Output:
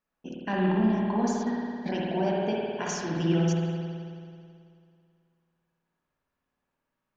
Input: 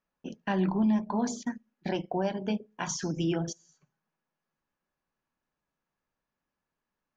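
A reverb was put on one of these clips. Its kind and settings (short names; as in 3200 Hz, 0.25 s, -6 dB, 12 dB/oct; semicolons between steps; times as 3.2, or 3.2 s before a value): spring tank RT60 2.3 s, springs 54 ms, chirp 30 ms, DRR -4 dB; gain -1.5 dB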